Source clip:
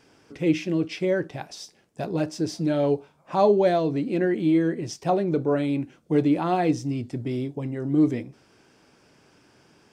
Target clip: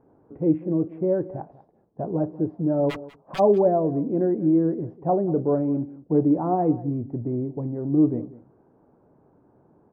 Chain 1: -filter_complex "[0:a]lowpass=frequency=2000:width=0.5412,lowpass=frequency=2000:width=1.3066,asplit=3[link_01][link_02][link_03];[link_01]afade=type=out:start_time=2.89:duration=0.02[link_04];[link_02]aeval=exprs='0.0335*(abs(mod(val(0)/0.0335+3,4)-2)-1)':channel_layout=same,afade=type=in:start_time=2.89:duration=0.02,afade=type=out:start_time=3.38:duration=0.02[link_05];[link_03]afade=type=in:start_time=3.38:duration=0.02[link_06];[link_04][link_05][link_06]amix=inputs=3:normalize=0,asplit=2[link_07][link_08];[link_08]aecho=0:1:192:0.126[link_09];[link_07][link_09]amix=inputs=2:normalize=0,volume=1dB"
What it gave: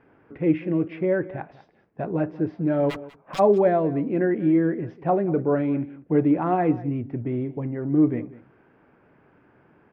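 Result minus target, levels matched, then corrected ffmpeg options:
2,000 Hz band +11.0 dB
-filter_complex "[0:a]lowpass=frequency=950:width=0.5412,lowpass=frequency=950:width=1.3066,asplit=3[link_01][link_02][link_03];[link_01]afade=type=out:start_time=2.89:duration=0.02[link_04];[link_02]aeval=exprs='0.0335*(abs(mod(val(0)/0.0335+3,4)-2)-1)':channel_layout=same,afade=type=in:start_time=2.89:duration=0.02,afade=type=out:start_time=3.38:duration=0.02[link_05];[link_03]afade=type=in:start_time=3.38:duration=0.02[link_06];[link_04][link_05][link_06]amix=inputs=3:normalize=0,asplit=2[link_07][link_08];[link_08]aecho=0:1:192:0.126[link_09];[link_07][link_09]amix=inputs=2:normalize=0,volume=1dB"

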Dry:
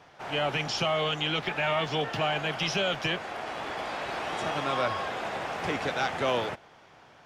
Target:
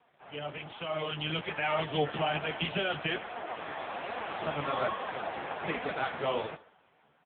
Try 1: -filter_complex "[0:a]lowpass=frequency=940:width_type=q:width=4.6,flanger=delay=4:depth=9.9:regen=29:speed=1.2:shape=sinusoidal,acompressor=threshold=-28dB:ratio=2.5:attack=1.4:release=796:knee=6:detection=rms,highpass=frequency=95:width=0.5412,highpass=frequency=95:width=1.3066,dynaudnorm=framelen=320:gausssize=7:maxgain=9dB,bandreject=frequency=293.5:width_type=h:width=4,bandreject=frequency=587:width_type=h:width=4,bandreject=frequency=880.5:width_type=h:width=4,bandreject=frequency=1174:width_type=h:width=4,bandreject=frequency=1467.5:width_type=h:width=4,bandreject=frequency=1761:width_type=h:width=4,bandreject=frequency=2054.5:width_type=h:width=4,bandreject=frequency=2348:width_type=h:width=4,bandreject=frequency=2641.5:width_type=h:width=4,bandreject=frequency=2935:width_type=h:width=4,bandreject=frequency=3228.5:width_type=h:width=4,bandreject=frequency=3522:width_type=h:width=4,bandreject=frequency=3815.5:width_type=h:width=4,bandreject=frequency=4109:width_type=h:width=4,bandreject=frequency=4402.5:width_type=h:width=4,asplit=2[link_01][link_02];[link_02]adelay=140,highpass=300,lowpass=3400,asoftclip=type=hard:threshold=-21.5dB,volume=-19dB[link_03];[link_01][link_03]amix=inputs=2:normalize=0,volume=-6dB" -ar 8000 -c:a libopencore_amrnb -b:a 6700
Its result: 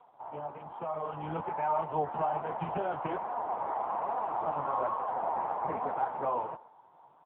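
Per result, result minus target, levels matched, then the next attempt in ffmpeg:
downward compressor: peak gain reduction +7.5 dB; 1,000 Hz band +5.0 dB
-filter_complex "[0:a]lowpass=frequency=940:width_type=q:width=4.6,flanger=delay=4:depth=9.9:regen=29:speed=1.2:shape=sinusoidal,highpass=frequency=95:width=0.5412,highpass=frequency=95:width=1.3066,dynaudnorm=framelen=320:gausssize=7:maxgain=9dB,bandreject=frequency=293.5:width_type=h:width=4,bandreject=frequency=587:width_type=h:width=4,bandreject=frequency=880.5:width_type=h:width=4,bandreject=frequency=1174:width_type=h:width=4,bandreject=frequency=1467.5:width_type=h:width=4,bandreject=frequency=1761:width_type=h:width=4,bandreject=frequency=2054.5:width_type=h:width=4,bandreject=frequency=2348:width_type=h:width=4,bandreject=frequency=2641.5:width_type=h:width=4,bandreject=frequency=2935:width_type=h:width=4,bandreject=frequency=3228.5:width_type=h:width=4,bandreject=frequency=3522:width_type=h:width=4,bandreject=frequency=3815.5:width_type=h:width=4,bandreject=frequency=4109:width_type=h:width=4,bandreject=frequency=4402.5:width_type=h:width=4,asplit=2[link_01][link_02];[link_02]adelay=140,highpass=300,lowpass=3400,asoftclip=type=hard:threshold=-21.5dB,volume=-19dB[link_03];[link_01][link_03]amix=inputs=2:normalize=0,volume=-6dB" -ar 8000 -c:a libopencore_amrnb -b:a 6700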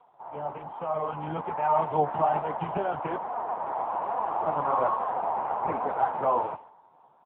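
1,000 Hz band +5.0 dB
-filter_complex "[0:a]flanger=delay=4:depth=9.9:regen=29:speed=1.2:shape=sinusoidal,highpass=frequency=95:width=0.5412,highpass=frequency=95:width=1.3066,dynaudnorm=framelen=320:gausssize=7:maxgain=9dB,bandreject=frequency=293.5:width_type=h:width=4,bandreject=frequency=587:width_type=h:width=4,bandreject=frequency=880.5:width_type=h:width=4,bandreject=frequency=1174:width_type=h:width=4,bandreject=frequency=1467.5:width_type=h:width=4,bandreject=frequency=1761:width_type=h:width=4,bandreject=frequency=2054.5:width_type=h:width=4,bandreject=frequency=2348:width_type=h:width=4,bandreject=frequency=2641.5:width_type=h:width=4,bandreject=frequency=2935:width_type=h:width=4,bandreject=frequency=3228.5:width_type=h:width=4,bandreject=frequency=3522:width_type=h:width=4,bandreject=frequency=3815.5:width_type=h:width=4,bandreject=frequency=4109:width_type=h:width=4,bandreject=frequency=4402.5:width_type=h:width=4,asplit=2[link_01][link_02];[link_02]adelay=140,highpass=300,lowpass=3400,asoftclip=type=hard:threshold=-21.5dB,volume=-19dB[link_03];[link_01][link_03]amix=inputs=2:normalize=0,volume=-6dB" -ar 8000 -c:a libopencore_amrnb -b:a 6700

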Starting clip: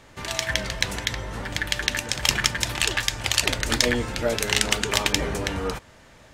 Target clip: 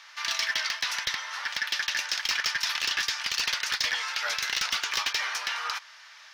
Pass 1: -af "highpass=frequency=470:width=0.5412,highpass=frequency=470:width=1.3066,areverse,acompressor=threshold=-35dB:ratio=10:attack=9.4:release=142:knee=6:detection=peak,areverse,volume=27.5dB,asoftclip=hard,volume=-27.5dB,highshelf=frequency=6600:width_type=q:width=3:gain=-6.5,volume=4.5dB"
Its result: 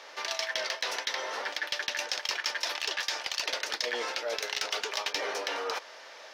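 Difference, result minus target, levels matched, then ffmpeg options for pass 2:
500 Hz band +16.5 dB; downward compressor: peak gain reduction +8 dB
-af "highpass=frequency=1100:width=0.5412,highpass=frequency=1100:width=1.3066,areverse,acompressor=threshold=-26dB:ratio=10:attack=9.4:release=142:knee=6:detection=peak,areverse,volume=27.5dB,asoftclip=hard,volume=-27.5dB,highshelf=frequency=6600:width_type=q:width=3:gain=-6.5,volume=4.5dB"

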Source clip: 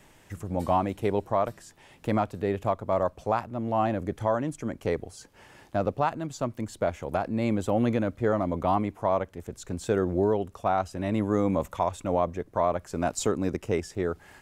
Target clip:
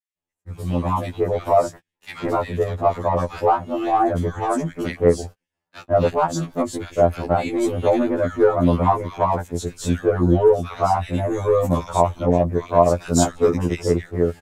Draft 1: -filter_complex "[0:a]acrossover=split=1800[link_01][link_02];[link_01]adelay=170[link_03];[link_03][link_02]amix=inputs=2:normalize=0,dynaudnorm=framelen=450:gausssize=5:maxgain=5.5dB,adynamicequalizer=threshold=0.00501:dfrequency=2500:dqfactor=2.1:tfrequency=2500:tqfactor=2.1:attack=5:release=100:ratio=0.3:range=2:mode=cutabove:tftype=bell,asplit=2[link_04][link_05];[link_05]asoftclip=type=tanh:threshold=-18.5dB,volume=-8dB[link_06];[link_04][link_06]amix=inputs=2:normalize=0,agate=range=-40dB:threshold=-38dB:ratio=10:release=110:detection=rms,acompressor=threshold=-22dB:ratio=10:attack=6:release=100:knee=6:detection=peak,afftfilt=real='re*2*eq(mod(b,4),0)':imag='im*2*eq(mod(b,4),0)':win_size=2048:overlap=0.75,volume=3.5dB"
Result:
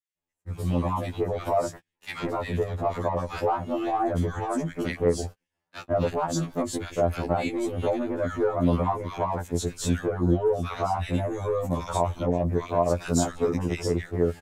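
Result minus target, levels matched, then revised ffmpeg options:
downward compressor: peak gain reduction +10.5 dB
-filter_complex "[0:a]acrossover=split=1800[link_01][link_02];[link_01]adelay=170[link_03];[link_03][link_02]amix=inputs=2:normalize=0,dynaudnorm=framelen=450:gausssize=5:maxgain=5.5dB,adynamicequalizer=threshold=0.00501:dfrequency=2500:dqfactor=2.1:tfrequency=2500:tqfactor=2.1:attack=5:release=100:ratio=0.3:range=2:mode=cutabove:tftype=bell,asplit=2[link_04][link_05];[link_05]asoftclip=type=tanh:threshold=-18.5dB,volume=-8dB[link_06];[link_04][link_06]amix=inputs=2:normalize=0,agate=range=-40dB:threshold=-38dB:ratio=10:release=110:detection=rms,afftfilt=real='re*2*eq(mod(b,4),0)':imag='im*2*eq(mod(b,4),0)':win_size=2048:overlap=0.75,volume=3.5dB"

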